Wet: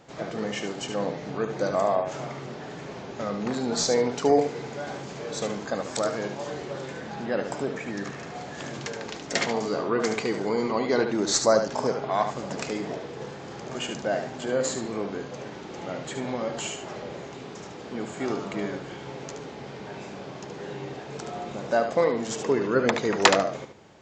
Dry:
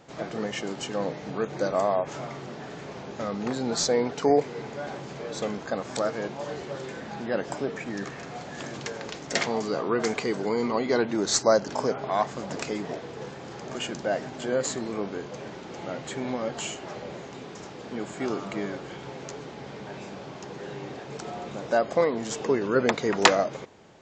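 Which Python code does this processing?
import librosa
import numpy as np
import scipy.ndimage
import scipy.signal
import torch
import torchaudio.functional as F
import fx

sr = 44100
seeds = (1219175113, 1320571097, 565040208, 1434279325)

y = fx.high_shelf(x, sr, hz=7200.0, db=9.0, at=(3.91, 6.5))
y = fx.echo_feedback(y, sr, ms=73, feedback_pct=18, wet_db=-7.5)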